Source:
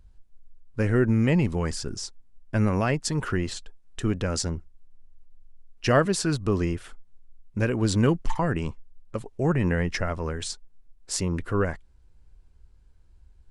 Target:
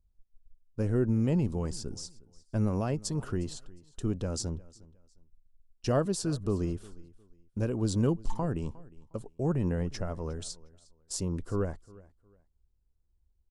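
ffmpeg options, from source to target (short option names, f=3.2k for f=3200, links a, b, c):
-filter_complex "[0:a]agate=range=-12dB:threshold=-42dB:ratio=16:detection=peak,equalizer=f=2k:t=o:w=1.3:g=-14.5,asplit=2[a][b];[b]aecho=0:1:358|716:0.0794|0.0207[c];[a][c]amix=inputs=2:normalize=0,volume=-5dB"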